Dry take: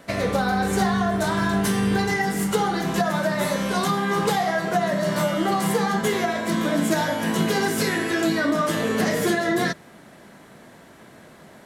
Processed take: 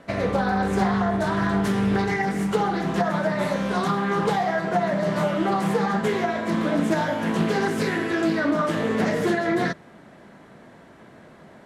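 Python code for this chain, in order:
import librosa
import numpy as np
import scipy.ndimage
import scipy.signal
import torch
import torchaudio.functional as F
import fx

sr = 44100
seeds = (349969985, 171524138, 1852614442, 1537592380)

y = scipy.signal.sosfilt(scipy.signal.butter(2, 12000.0, 'lowpass', fs=sr, output='sos'), x)
y = fx.high_shelf(y, sr, hz=3700.0, db=-11.0)
y = fx.doppler_dist(y, sr, depth_ms=0.26)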